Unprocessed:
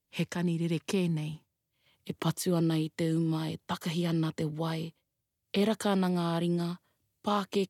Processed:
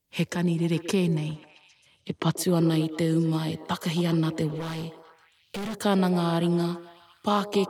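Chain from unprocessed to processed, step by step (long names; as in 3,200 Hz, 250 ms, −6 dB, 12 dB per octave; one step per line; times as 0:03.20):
0:01.17–0:02.36: low-pass filter 10,000 Hz → 4,900 Hz 12 dB per octave
0:04.52–0:05.83: gain into a clipping stage and back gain 35.5 dB
on a send: echo through a band-pass that steps 134 ms, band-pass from 440 Hz, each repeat 0.7 octaves, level −8 dB
on the sum: level +5 dB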